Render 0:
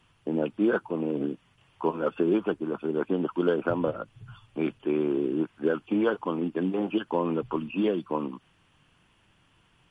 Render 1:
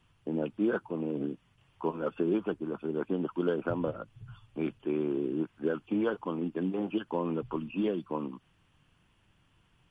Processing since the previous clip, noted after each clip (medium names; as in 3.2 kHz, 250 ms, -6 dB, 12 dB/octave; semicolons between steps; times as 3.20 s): bass shelf 170 Hz +7 dB; trim -6 dB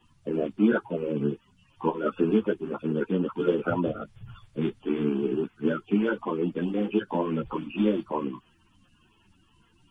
coarse spectral quantiser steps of 30 dB; three-phase chorus; trim +8.5 dB